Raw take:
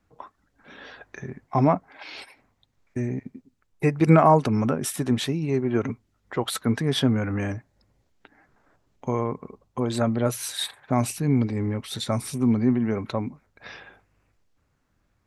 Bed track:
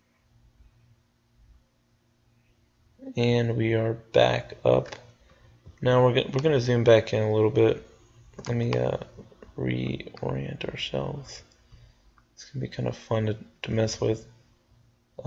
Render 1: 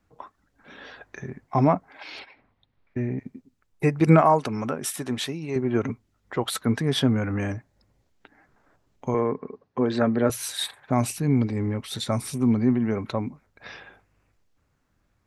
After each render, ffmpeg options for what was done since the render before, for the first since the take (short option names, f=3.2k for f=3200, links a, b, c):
-filter_complex "[0:a]asettb=1/sr,asplit=3[a][b][c];[a]atrim=end=2.194[d];[b]atrim=start=2.19:end=3.19,asetpts=PTS-STARTPTS,afade=t=in:d=0.004:c=qsin,afade=t=out:st=0.996:d=0.004:c=qsin,lowpass=f=4k:w=0.5412,lowpass=f=4k:w=1.3066[e];[c]atrim=start=3.186[f];[d][e]acrossfade=d=0.004:c1=hsin:c2=qsin[g];[g][f]acrossfade=d=0.004:c1=qsin:c2=hsin,asettb=1/sr,asplit=3[h][i][j];[h]atrim=end=4.214[k];[i]atrim=start=4.21:end=5.56,asetpts=PTS-STARTPTS,afade=t=in:d=0.004:c=qsin,afade=t=out:st=1.346:d=0.004:c=qsin,lowshelf=f=330:g=-9.5[l];[j]atrim=start=5.556[m];[k][l]acrossfade=d=0.004:c1=hsin:c2=qsin[n];[n][m]acrossfade=d=0.004:c1=qsin:c2=hsin,asettb=1/sr,asplit=3[o][p][q];[o]atrim=end=9.144[r];[p]atrim=start=9.14:end=10.3,asetpts=PTS-STARTPTS,afade=t=in:d=0.004:c=qsin,afade=t=out:st=1.156:d=0.004:c=qsin,highpass=130,equalizer=f=260:t=q:w=4:g=4,equalizer=f=430:t=q:w=4:g=7,equalizer=f=1.7k:t=q:w=4:g=8,equalizer=f=3.3k:t=q:w=4:g=-4,lowpass=f=5k:w=0.5412,lowpass=f=5k:w=1.3066[s];[q]atrim=start=10.296[t];[r][s]acrossfade=d=0.004:c1=hsin:c2=qsin[u];[u][t]acrossfade=d=0.004:c1=qsin:c2=hsin"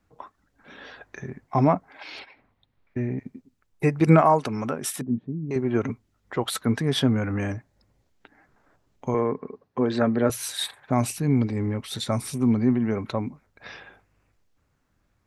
-filter_complex "[0:a]asettb=1/sr,asplit=3[a][b][c];[a]atrim=end=5.014[d];[b]atrim=start=5.01:end=5.51,asetpts=PTS-STARTPTS,afade=t=in:d=0.004:c=qsin,afade=t=out:st=0.496:d=0.004:c=qsin,lowpass=f=220:t=q:w=1.9[e];[c]atrim=start=5.506[f];[d][e]acrossfade=d=0.004:c1=hsin:c2=qsin[g];[g][f]acrossfade=d=0.004:c1=qsin:c2=hsin"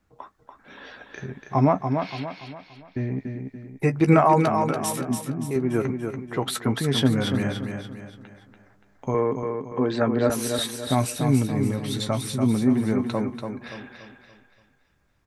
-filter_complex "[0:a]asplit=2[a][b];[b]adelay=15,volume=-10.5dB[c];[a][c]amix=inputs=2:normalize=0,asplit=2[d][e];[e]aecho=0:1:287|574|861|1148|1435:0.501|0.205|0.0842|0.0345|0.0142[f];[d][f]amix=inputs=2:normalize=0"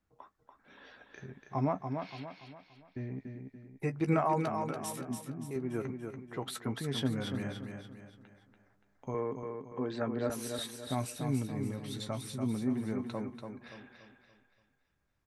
-af "volume=-12dB"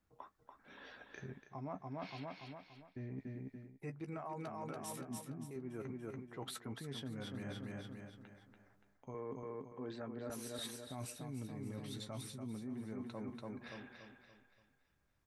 -af "alimiter=limit=-24dB:level=0:latency=1:release=160,areverse,acompressor=threshold=-42dB:ratio=6,areverse"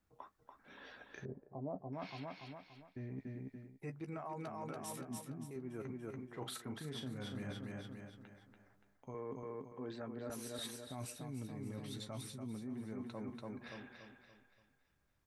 -filter_complex "[0:a]asettb=1/sr,asplit=3[a][b][c];[a]atrim=end=1.254[d];[b]atrim=start=1.25:end=1.93,asetpts=PTS-STARTPTS,afade=t=in:d=0.004:c=qsin,afade=t=out:st=0.676:d=0.004:c=qsin,lowpass=f=540:t=q:w=2.3[e];[c]atrim=start=1.926[f];[d][e]acrossfade=d=0.004:c1=hsin:c2=qsin[g];[g][f]acrossfade=d=0.004:c1=qsin:c2=hsin,asettb=1/sr,asplit=3[h][i][j];[h]atrim=end=6.164[k];[i]atrim=start=6.16:end=7.51,asetpts=PTS-STARTPTS,afade=t=in:d=0.004:c=qsin,afade=t=out:st=1.346:d=0.004:c=qsin,asplit=2[l][m];[m]adelay=39,volume=-8dB[n];[l][n]amix=inputs=2:normalize=0,atrim=end_sample=59535[o];[j]atrim=start=7.506[p];[k][o]acrossfade=d=0.004:c1=hsin:c2=qsin[q];[q][p]acrossfade=d=0.004:c1=qsin:c2=hsin"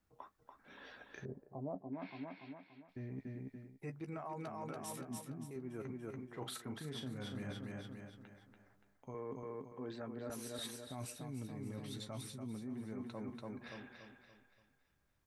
-filter_complex "[0:a]asettb=1/sr,asplit=3[a][b][c];[a]atrim=end=1.754[d];[b]atrim=start=1.75:end=2.89,asetpts=PTS-STARTPTS,afade=t=in:d=0.004:c=qsin,afade=t=out:st=1.136:d=0.004:c=qsin,highpass=130,equalizer=f=140:t=q:w=4:g=-5,equalizer=f=270:t=q:w=4:g=5,equalizer=f=500:t=q:w=4:g=-4,equalizer=f=750:t=q:w=4:g=-4,equalizer=f=1.2k:t=q:w=4:g=-7,equalizer=f=3k:t=q:w=4:g=-7,lowpass=f=3.4k:w=0.5412,lowpass=f=3.4k:w=1.3066[e];[c]atrim=start=2.886[f];[d][e]acrossfade=d=0.004:c1=hsin:c2=qsin[g];[g][f]acrossfade=d=0.004:c1=qsin:c2=hsin"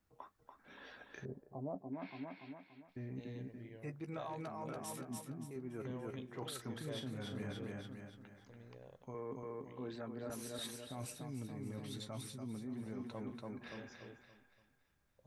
-filter_complex "[1:a]volume=-31dB[a];[0:a][a]amix=inputs=2:normalize=0"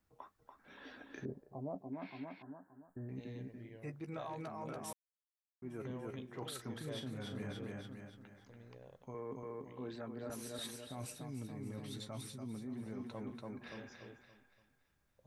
-filter_complex "[0:a]asettb=1/sr,asplit=3[a][b][c];[a]atrim=end=0.854[d];[b]atrim=start=0.85:end=1.3,asetpts=PTS-STARTPTS,afade=t=in:d=0.004:c=qsin,afade=t=out:st=0.446:d=0.004:c=qsin,equalizer=f=280:t=o:w=0.54:g=14[e];[c]atrim=start=1.296[f];[d][e]acrossfade=d=0.004:c1=hsin:c2=qsin[g];[g][f]acrossfade=d=0.004:c1=qsin:c2=hsin,asettb=1/sr,asplit=3[h][i][j];[h]atrim=end=2.424[k];[i]atrim=start=2.42:end=3.09,asetpts=PTS-STARTPTS,afade=t=in:d=0.004:c=qsin,afade=t=out:st=0.666:d=0.004:c=qsin,asuperstop=centerf=3500:order=20:qfactor=0.68[l];[j]atrim=start=3.086[m];[k][l]acrossfade=d=0.004:c1=hsin:c2=qsin[n];[n][m]acrossfade=d=0.004:c1=qsin:c2=hsin,asplit=3[o][p][q];[o]atrim=end=4.93,asetpts=PTS-STARTPTS,afade=t=out:st=4.926:d=0.004:c=hsin[r];[p]atrim=start=4.93:end=5.62,asetpts=PTS-STARTPTS,volume=0[s];[q]atrim=start=5.62,asetpts=PTS-STARTPTS,afade=t=in:d=0.004:c=hsin[t];[r][s][t]concat=n=3:v=0:a=1"